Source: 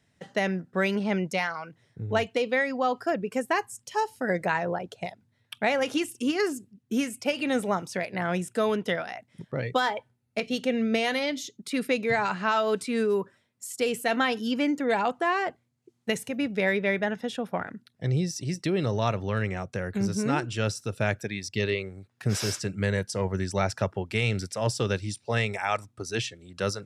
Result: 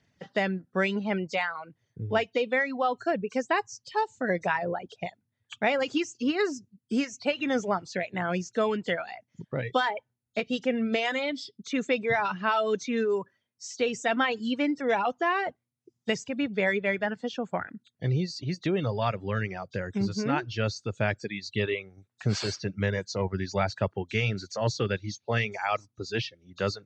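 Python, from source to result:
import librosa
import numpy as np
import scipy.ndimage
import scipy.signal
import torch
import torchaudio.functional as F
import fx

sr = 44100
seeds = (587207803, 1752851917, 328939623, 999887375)

y = fx.freq_compress(x, sr, knee_hz=3100.0, ratio=1.5)
y = fx.dereverb_blind(y, sr, rt60_s=0.9)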